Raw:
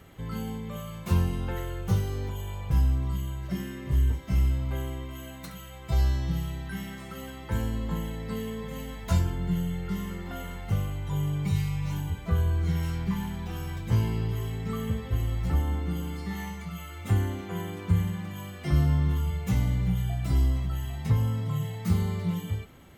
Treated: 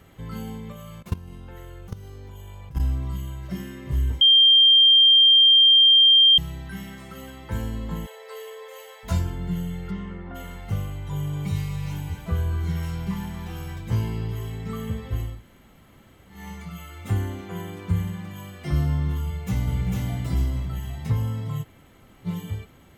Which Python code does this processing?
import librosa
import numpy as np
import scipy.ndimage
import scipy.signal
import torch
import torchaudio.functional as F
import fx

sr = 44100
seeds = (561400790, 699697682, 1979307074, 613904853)

y = fx.level_steps(x, sr, step_db=20, at=(0.72, 2.8))
y = fx.brickwall_highpass(y, sr, low_hz=400.0, at=(8.05, 9.03), fade=0.02)
y = fx.lowpass(y, sr, hz=fx.line((9.9, 3400.0), (10.34, 1600.0)), slope=12, at=(9.9, 10.34), fade=0.02)
y = fx.echo_thinned(y, sr, ms=238, feedback_pct=46, hz=420.0, wet_db=-7.5, at=(11.17, 13.73), fade=0.02)
y = fx.echo_throw(y, sr, start_s=19.22, length_s=0.67, ms=450, feedback_pct=35, wet_db=-1.0)
y = fx.edit(y, sr, fx.bleep(start_s=4.21, length_s=2.17, hz=3180.0, db=-11.0),
    fx.room_tone_fill(start_s=15.32, length_s=1.08, crossfade_s=0.24),
    fx.room_tone_fill(start_s=21.63, length_s=0.63, crossfade_s=0.04), tone=tone)